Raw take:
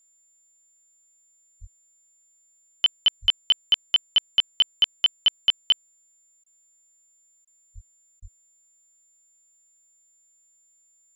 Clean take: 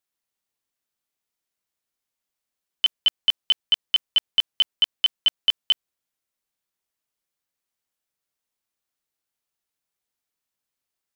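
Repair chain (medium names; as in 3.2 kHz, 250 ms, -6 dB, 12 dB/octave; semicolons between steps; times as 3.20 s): band-stop 7.2 kHz, Q 30; de-plosive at 1.60/3.21/7.74/8.21 s; interpolate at 6.44/7.45/8.20 s, 21 ms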